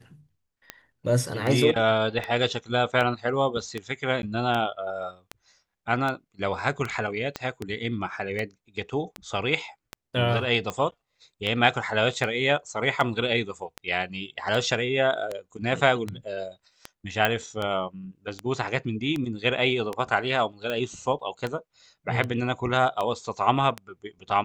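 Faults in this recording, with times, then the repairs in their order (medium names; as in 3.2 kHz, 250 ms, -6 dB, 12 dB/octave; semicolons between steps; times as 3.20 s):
tick 78 rpm -16 dBFS
4.22–4.23 s: dropout 11 ms
7.36 s: pop -15 dBFS
17.25 s: pop -8 dBFS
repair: de-click; interpolate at 4.22 s, 11 ms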